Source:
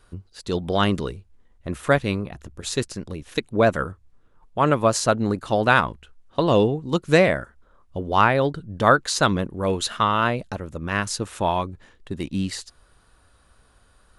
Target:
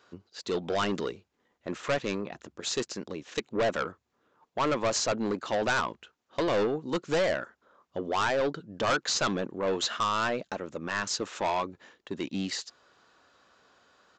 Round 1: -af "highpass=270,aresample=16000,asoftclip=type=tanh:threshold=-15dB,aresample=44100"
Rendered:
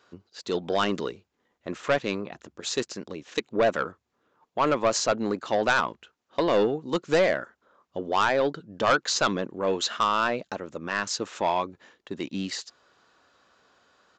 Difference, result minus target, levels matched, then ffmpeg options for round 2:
soft clip: distortion -5 dB
-af "highpass=270,aresample=16000,asoftclip=type=tanh:threshold=-22.5dB,aresample=44100"

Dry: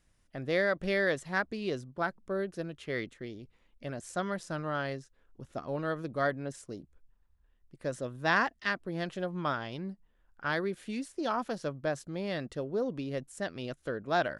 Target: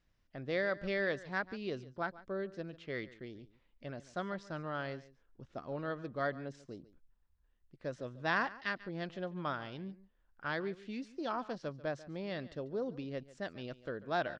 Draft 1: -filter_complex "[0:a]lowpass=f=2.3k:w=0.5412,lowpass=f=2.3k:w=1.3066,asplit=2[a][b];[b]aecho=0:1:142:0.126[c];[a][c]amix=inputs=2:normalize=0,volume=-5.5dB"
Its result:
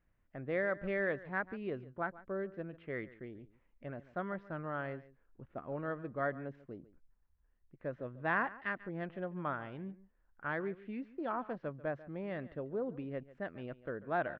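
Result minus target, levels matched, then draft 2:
4000 Hz band -13.0 dB
-filter_complex "[0:a]lowpass=f=5.5k:w=0.5412,lowpass=f=5.5k:w=1.3066,asplit=2[a][b];[b]aecho=0:1:142:0.126[c];[a][c]amix=inputs=2:normalize=0,volume=-5.5dB"

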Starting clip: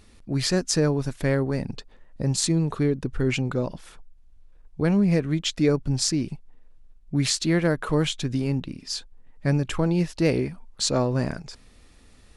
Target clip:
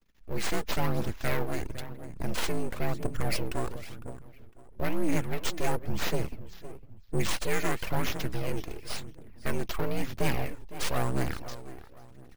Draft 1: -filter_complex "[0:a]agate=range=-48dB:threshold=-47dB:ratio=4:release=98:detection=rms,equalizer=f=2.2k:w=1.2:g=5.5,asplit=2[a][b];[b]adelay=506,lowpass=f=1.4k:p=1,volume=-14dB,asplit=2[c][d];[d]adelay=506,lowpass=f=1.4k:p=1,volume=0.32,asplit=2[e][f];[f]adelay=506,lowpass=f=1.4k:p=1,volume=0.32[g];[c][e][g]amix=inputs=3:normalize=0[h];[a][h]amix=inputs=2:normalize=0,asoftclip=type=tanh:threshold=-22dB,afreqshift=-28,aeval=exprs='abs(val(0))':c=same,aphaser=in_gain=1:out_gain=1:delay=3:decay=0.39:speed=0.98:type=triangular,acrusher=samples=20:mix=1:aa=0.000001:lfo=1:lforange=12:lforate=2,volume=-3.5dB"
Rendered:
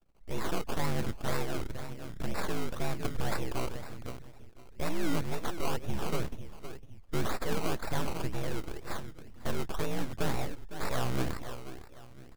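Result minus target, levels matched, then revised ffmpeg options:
decimation with a swept rate: distortion +7 dB; soft clip: distortion +7 dB
-filter_complex "[0:a]agate=range=-48dB:threshold=-47dB:ratio=4:release=98:detection=rms,equalizer=f=2.2k:w=1.2:g=5.5,asplit=2[a][b];[b]adelay=506,lowpass=f=1.4k:p=1,volume=-14dB,asplit=2[c][d];[d]adelay=506,lowpass=f=1.4k:p=1,volume=0.32,asplit=2[e][f];[f]adelay=506,lowpass=f=1.4k:p=1,volume=0.32[g];[c][e][g]amix=inputs=3:normalize=0[h];[a][h]amix=inputs=2:normalize=0,asoftclip=type=tanh:threshold=-15.5dB,afreqshift=-28,aeval=exprs='abs(val(0))':c=same,aphaser=in_gain=1:out_gain=1:delay=3:decay=0.39:speed=0.98:type=triangular,acrusher=samples=4:mix=1:aa=0.000001:lfo=1:lforange=2.4:lforate=2,volume=-3.5dB"

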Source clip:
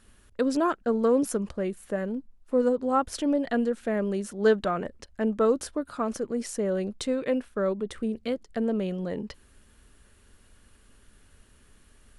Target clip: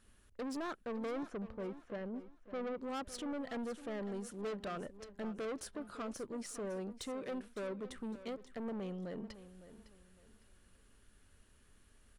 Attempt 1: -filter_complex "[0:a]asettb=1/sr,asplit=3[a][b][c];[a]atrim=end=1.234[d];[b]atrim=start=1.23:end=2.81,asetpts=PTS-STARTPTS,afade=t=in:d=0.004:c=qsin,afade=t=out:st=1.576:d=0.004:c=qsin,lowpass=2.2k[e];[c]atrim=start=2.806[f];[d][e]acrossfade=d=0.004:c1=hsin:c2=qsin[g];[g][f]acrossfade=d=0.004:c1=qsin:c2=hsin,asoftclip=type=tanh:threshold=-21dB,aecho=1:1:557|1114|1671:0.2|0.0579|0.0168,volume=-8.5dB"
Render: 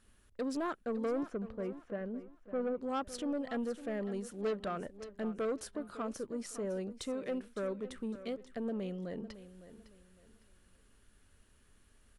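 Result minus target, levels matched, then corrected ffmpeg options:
soft clip: distortion -6 dB
-filter_complex "[0:a]asettb=1/sr,asplit=3[a][b][c];[a]atrim=end=1.234[d];[b]atrim=start=1.23:end=2.81,asetpts=PTS-STARTPTS,afade=t=in:d=0.004:c=qsin,afade=t=out:st=1.576:d=0.004:c=qsin,lowpass=2.2k[e];[c]atrim=start=2.806[f];[d][e]acrossfade=d=0.004:c1=hsin:c2=qsin[g];[g][f]acrossfade=d=0.004:c1=qsin:c2=hsin,asoftclip=type=tanh:threshold=-29dB,aecho=1:1:557|1114|1671:0.2|0.0579|0.0168,volume=-8.5dB"

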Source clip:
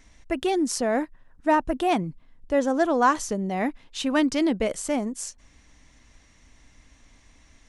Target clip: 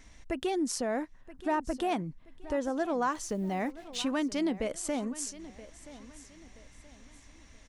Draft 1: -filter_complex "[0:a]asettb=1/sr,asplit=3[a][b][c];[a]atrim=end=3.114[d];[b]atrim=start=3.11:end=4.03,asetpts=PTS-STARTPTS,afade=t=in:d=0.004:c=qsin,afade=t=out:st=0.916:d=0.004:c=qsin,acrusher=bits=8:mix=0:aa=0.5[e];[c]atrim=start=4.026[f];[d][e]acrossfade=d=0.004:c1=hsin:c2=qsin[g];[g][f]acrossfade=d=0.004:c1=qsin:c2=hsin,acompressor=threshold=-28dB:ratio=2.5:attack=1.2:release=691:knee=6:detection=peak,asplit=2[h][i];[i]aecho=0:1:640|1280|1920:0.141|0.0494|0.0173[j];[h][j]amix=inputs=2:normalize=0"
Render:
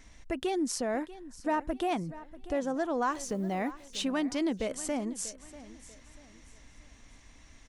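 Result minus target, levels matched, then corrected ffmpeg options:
echo 0.336 s early
-filter_complex "[0:a]asettb=1/sr,asplit=3[a][b][c];[a]atrim=end=3.114[d];[b]atrim=start=3.11:end=4.03,asetpts=PTS-STARTPTS,afade=t=in:d=0.004:c=qsin,afade=t=out:st=0.916:d=0.004:c=qsin,acrusher=bits=8:mix=0:aa=0.5[e];[c]atrim=start=4.026[f];[d][e]acrossfade=d=0.004:c1=hsin:c2=qsin[g];[g][f]acrossfade=d=0.004:c1=qsin:c2=hsin,acompressor=threshold=-28dB:ratio=2.5:attack=1.2:release=691:knee=6:detection=peak,asplit=2[h][i];[i]aecho=0:1:976|1952|2928:0.141|0.0494|0.0173[j];[h][j]amix=inputs=2:normalize=0"

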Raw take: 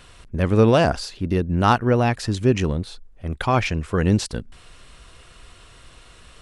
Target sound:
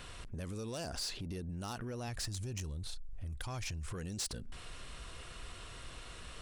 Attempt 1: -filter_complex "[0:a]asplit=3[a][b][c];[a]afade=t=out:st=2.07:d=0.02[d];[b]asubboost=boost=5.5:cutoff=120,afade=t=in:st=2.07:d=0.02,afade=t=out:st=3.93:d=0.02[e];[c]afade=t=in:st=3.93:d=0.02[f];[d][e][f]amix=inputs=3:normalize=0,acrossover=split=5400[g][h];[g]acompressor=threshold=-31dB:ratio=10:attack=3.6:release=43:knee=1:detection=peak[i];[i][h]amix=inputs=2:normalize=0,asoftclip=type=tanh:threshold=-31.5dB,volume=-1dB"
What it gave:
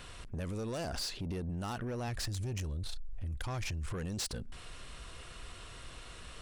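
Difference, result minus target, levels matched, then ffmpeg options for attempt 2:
compressor: peak gain reduction -6 dB
-filter_complex "[0:a]asplit=3[a][b][c];[a]afade=t=out:st=2.07:d=0.02[d];[b]asubboost=boost=5.5:cutoff=120,afade=t=in:st=2.07:d=0.02,afade=t=out:st=3.93:d=0.02[e];[c]afade=t=in:st=3.93:d=0.02[f];[d][e][f]amix=inputs=3:normalize=0,acrossover=split=5400[g][h];[g]acompressor=threshold=-37.5dB:ratio=10:attack=3.6:release=43:knee=1:detection=peak[i];[i][h]amix=inputs=2:normalize=0,asoftclip=type=tanh:threshold=-31.5dB,volume=-1dB"

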